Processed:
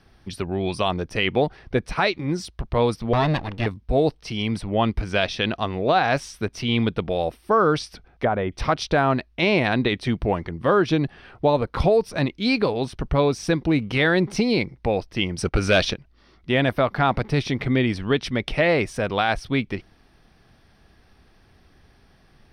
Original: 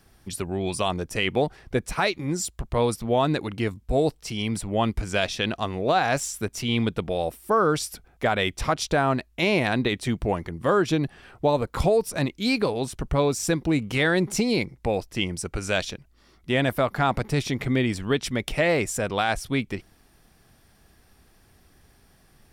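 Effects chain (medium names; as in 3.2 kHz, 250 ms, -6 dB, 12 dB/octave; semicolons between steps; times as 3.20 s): 3.13–3.66 s: comb filter that takes the minimum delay 1.1 ms; 15.38–15.94 s: waveshaping leveller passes 2; Savitzky-Golay filter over 15 samples; 7.79–8.52 s: low-pass that closes with the level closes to 1.1 kHz, closed at -21.5 dBFS; trim +2.5 dB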